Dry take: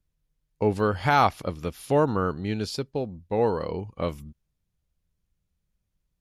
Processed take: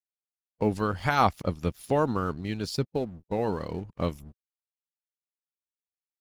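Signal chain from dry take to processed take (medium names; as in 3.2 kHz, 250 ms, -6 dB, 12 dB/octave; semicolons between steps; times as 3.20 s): crossover distortion -49.5 dBFS; harmonic-percussive split harmonic -10 dB; tone controls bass +7 dB, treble +2 dB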